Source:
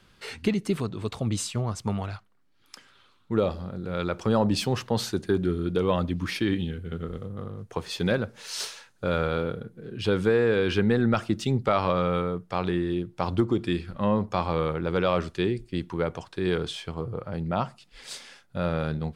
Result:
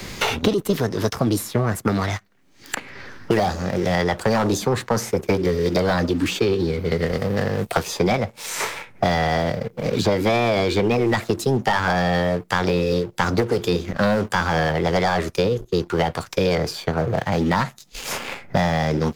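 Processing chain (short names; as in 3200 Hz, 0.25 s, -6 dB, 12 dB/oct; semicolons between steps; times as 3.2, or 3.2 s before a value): formant shift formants +6 st; sample leveller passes 2; three-band squash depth 100%; gain -1 dB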